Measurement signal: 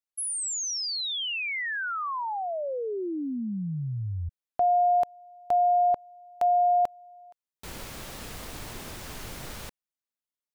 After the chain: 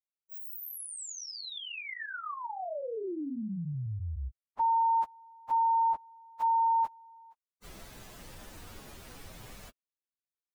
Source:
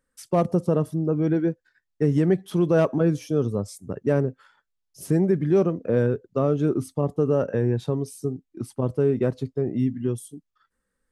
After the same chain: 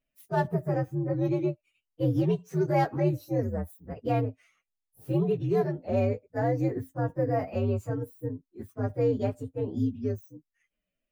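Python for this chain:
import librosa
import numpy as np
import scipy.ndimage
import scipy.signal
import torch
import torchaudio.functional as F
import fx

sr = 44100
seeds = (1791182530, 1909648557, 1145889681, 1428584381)

y = fx.partial_stretch(x, sr, pct=124)
y = y * 10.0 ** (-3.5 / 20.0)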